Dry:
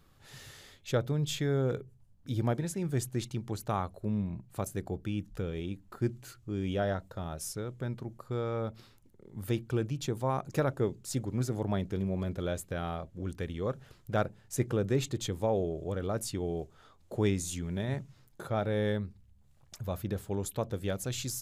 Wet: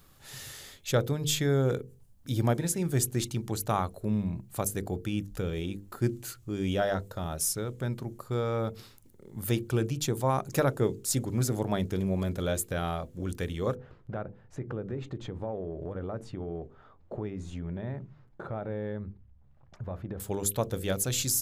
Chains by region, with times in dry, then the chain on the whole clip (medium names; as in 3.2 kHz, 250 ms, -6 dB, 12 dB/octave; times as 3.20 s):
13.75–20.20 s: low-pass 1.5 kHz + compression 5:1, threshold -35 dBFS
whole clip: treble shelf 6.8 kHz +10.5 dB; hum notches 50/100/150/200/250/300/350/400/450/500 Hz; trim +4 dB